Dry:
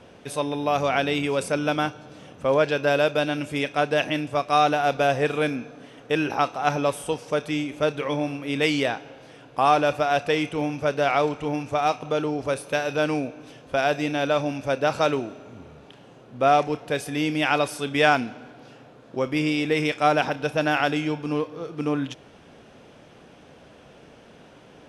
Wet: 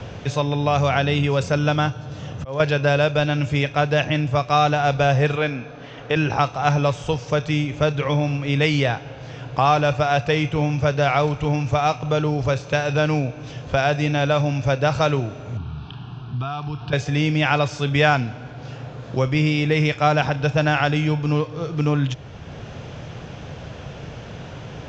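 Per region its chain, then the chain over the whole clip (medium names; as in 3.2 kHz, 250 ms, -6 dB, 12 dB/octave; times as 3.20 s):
0.94–2.60 s: band-stop 2.3 kHz, Q 14 + slow attack 560 ms
5.35–6.16 s: low-pass 5 kHz + peaking EQ 87 Hz -10.5 dB 2.6 oct
15.57–16.93 s: static phaser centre 2 kHz, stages 6 + compression 3:1, threshold -38 dBFS
whole clip: steep low-pass 7.4 kHz 96 dB/octave; resonant low shelf 170 Hz +12 dB, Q 1.5; three bands compressed up and down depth 40%; trim +3 dB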